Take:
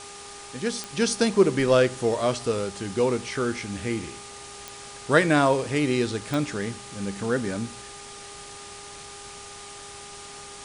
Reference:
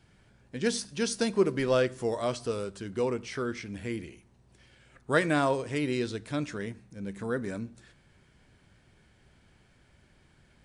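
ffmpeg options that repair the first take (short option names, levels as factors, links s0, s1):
-af "adeclick=t=4,bandreject=f=405:t=h:w=4,bandreject=f=810:t=h:w=4,bandreject=f=1215:t=h:w=4,afwtdn=0.01,asetnsamples=n=441:p=0,asendcmd='0.93 volume volume -6dB',volume=1"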